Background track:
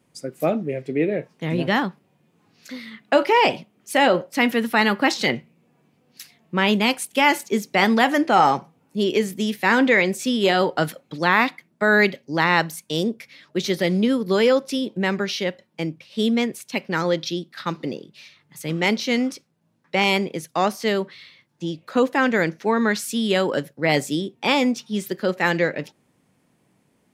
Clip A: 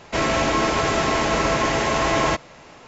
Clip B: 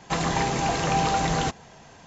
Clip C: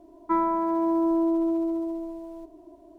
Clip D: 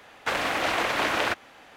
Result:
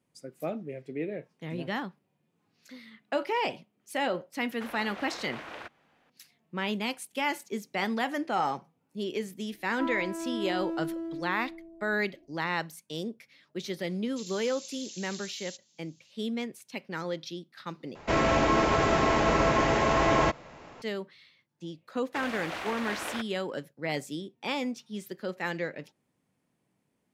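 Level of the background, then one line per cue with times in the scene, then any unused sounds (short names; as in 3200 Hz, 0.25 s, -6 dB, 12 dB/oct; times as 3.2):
background track -12.5 dB
4.34 add D -16.5 dB + high shelf 5400 Hz -9 dB
9.5 add C -9.5 dB + Wiener smoothing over 41 samples
14.06 add B -8 dB + inverse Chebyshev high-pass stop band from 1100 Hz, stop band 60 dB
17.95 replace with A -2.5 dB + high shelf 3000 Hz -9 dB
21.88 add D -11 dB + expander -44 dBFS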